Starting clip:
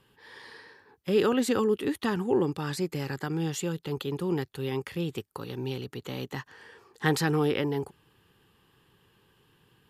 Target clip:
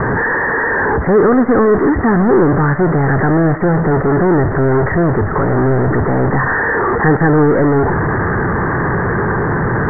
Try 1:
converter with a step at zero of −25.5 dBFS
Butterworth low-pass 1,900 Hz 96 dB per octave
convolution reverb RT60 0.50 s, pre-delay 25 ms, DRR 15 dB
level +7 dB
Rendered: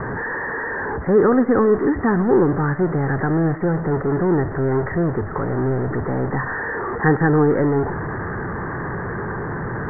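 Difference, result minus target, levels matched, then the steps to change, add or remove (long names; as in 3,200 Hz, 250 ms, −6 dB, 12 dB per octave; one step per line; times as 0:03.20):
converter with a step at zero: distortion −6 dB
change: converter with a step at zero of −14.5 dBFS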